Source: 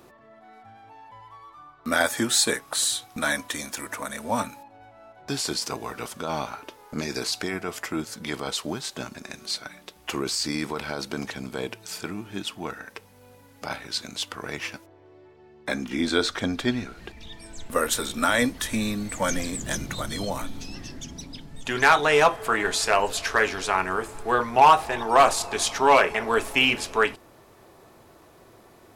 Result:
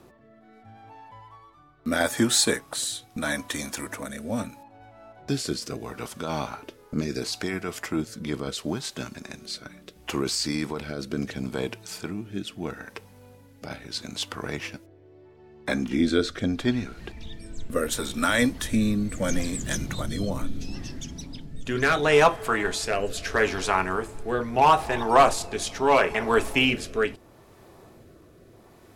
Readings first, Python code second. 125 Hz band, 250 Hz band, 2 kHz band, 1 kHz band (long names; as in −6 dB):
+4.5 dB, +3.0 dB, −2.5 dB, −3.0 dB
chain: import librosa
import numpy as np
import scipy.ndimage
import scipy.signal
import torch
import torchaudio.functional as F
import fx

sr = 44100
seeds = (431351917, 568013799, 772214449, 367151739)

y = fx.low_shelf(x, sr, hz=340.0, db=6.5)
y = fx.rotary(y, sr, hz=0.75)